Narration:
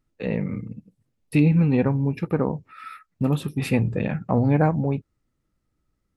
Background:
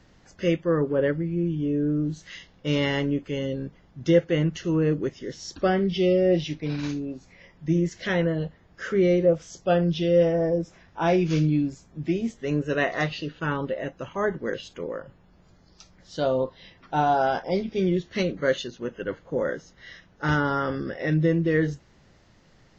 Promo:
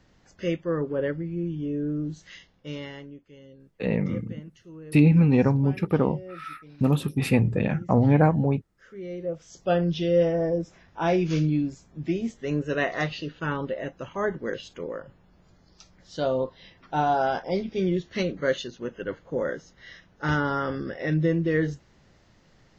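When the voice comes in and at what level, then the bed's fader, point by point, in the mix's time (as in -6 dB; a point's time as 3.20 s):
3.60 s, +0.5 dB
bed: 2.33 s -4 dB
3.24 s -20.5 dB
8.88 s -20.5 dB
9.68 s -1.5 dB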